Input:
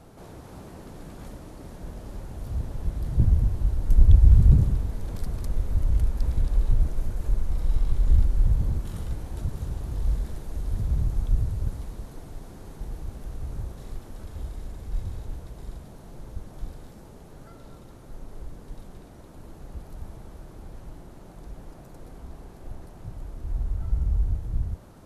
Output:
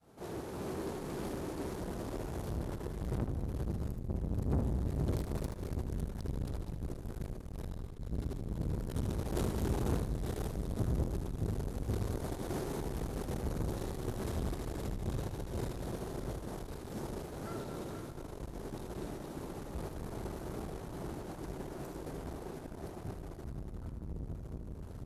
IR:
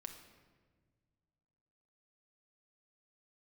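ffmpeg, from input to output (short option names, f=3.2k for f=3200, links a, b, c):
-filter_complex "[0:a]adynamicequalizer=threshold=0.00141:dfrequency=380:dqfactor=2.9:tfrequency=380:tqfactor=2.9:attack=5:release=100:ratio=0.375:range=4:mode=boostabove:tftype=bell,asplit=2[a][b];[b]aecho=0:1:477:0.473[c];[a][c]amix=inputs=2:normalize=0,acompressor=threshold=-28dB:ratio=4,asoftclip=type=tanh:threshold=-38.5dB,highpass=f=110:p=1,agate=range=-33dB:threshold=-40dB:ratio=3:detection=peak,dynaudnorm=f=220:g=31:m=7dB,asplit=2[d][e];[e]aecho=0:1:77|154|231|308|385:0.355|0.153|0.0656|0.0282|0.0121[f];[d][f]amix=inputs=2:normalize=0,volume=9dB"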